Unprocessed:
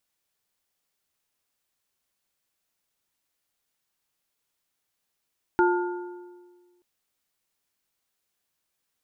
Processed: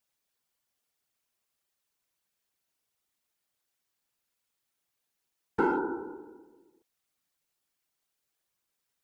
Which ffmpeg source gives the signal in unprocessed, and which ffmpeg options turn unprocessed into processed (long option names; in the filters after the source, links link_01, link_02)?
-f lavfi -i "aevalsrc='0.133*pow(10,-3*t/1.59)*sin(2*PI*355*t)+0.0944*pow(10,-3*t/1.208)*sin(2*PI*887.5*t)+0.0668*pow(10,-3*t/1.049)*sin(2*PI*1420*t)':duration=1.23:sample_rate=44100"
-filter_complex "[0:a]asplit=2[link_01][link_02];[link_02]asoftclip=type=hard:threshold=-20.5dB,volume=-7.5dB[link_03];[link_01][link_03]amix=inputs=2:normalize=0,afftfilt=real='hypot(re,im)*cos(2*PI*random(0))':imag='hypot(re,im)*sin(2*PI*random(1))':win_size=512:overlap=0.75"